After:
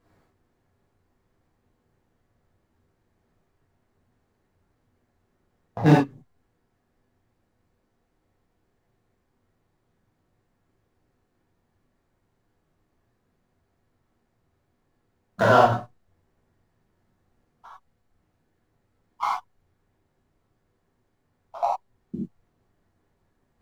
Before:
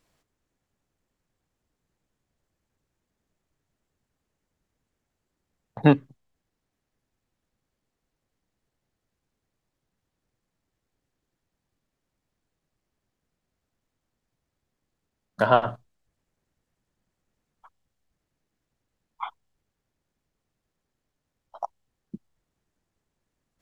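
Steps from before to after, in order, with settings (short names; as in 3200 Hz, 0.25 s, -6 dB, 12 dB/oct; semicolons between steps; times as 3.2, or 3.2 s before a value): median filter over 15 samples; compressor 2:1, threshold -27 dBFS, peak gain reduction 8.5 dB; non-linear reverb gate 0.12 s flat, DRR -7.5 dB; gain +3 dB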